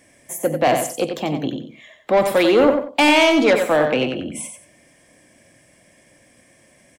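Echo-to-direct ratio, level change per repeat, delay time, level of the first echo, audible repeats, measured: -6.5 dB, -12.0 dB, 91 ms, -7.0 dB, 2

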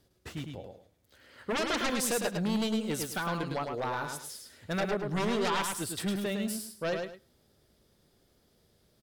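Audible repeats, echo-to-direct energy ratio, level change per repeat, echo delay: 2, -5.0 dB, -12.5 dB, 106 ms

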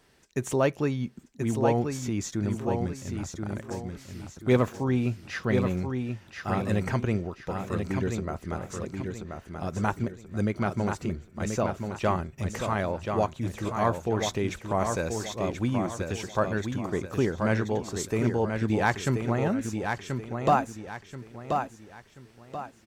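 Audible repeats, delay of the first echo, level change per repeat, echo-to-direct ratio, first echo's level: 4, 1032 ms, -9.0 dB, -5.0 dB, -5.5 dB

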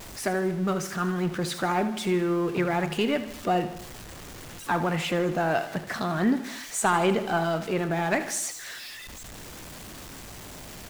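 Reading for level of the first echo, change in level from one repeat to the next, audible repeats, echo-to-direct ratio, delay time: -13.0 dB, -5.0 dB, 4, -11.5 dB, 78 ms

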